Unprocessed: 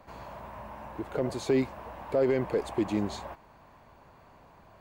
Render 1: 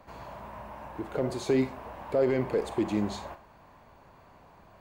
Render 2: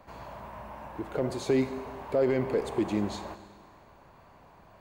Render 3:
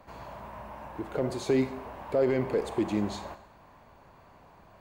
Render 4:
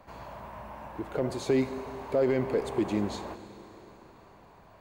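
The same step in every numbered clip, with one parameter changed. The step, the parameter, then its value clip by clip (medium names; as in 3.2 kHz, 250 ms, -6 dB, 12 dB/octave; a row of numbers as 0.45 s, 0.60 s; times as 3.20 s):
Schroeder reverb, RT60: 0.34 s, 1.7 s, 0.72 s, 3.6 s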